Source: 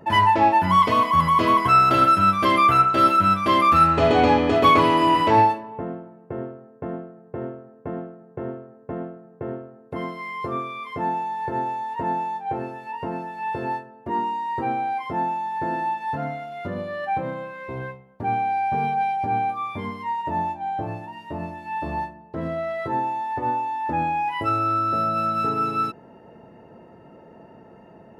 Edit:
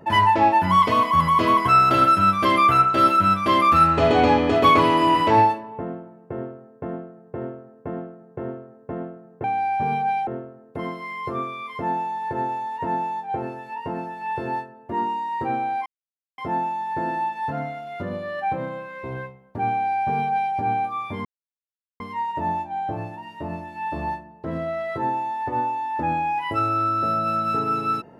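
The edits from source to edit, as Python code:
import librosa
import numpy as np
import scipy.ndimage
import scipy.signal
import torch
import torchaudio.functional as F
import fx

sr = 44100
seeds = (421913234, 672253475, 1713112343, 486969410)

y = fx.edit(x, sr, fx.insert_silence(at_s=15.03, length_s=0.52),
    fx.duplicate(start_s=18.36, length_s=0.83, to_s=9.44),
    fx.insert_silence(at_s=19.9, length_s=0.75), tone=tone)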